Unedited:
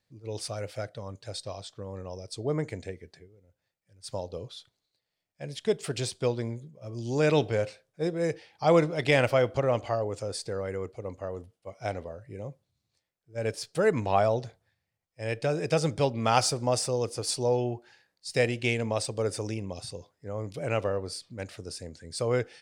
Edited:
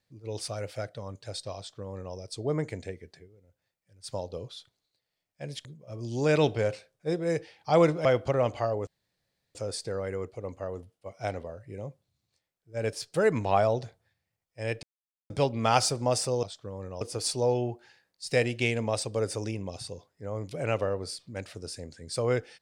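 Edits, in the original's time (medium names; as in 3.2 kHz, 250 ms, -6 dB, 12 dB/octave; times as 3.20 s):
1.57–2.15 s: copy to 17.04 s
5.65–6.59 s: delete
8.99–9.34 s: delete
10.16 s: insert room tone 0.68 s
15.44–15.91 s: mute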